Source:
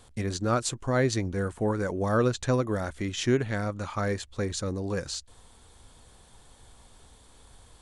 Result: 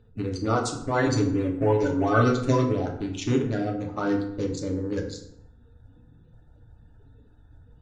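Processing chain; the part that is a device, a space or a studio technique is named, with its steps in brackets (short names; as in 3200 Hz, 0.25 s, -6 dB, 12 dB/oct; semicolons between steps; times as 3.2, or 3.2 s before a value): Wiener smoothing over 41 samples; clip after many re-uploads (LPF 8100 Hz 24 dB/oct; bin magnitudes rounded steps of 30 dB); 1.06–2.73 comb 7.3 ms, depth 89%; FDN reverb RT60 0.77 s, low-frequency decay 1.2×, high-frequency decay 0.6×, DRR 0.5 dB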